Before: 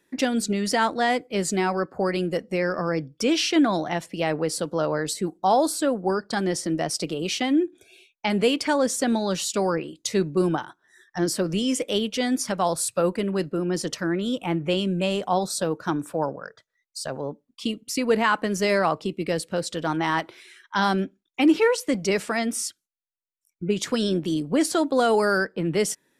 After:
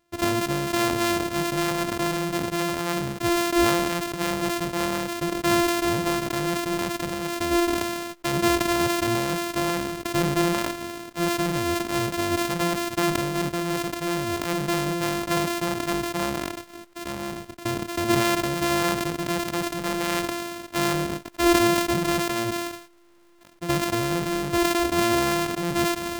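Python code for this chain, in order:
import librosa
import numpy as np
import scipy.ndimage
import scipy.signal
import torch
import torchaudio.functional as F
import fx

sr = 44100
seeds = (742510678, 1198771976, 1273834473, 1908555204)

y = np.r_[np.sort(x[:len(x) // 128 * 128].reshape(-1, 128), axis=1).ravel(), x[len(x) // 128 * 128:]]
y = fx.sustainer(y, sr, db_per_s=28.0)
y = y * librosa.db_to_amplitude(-2.0)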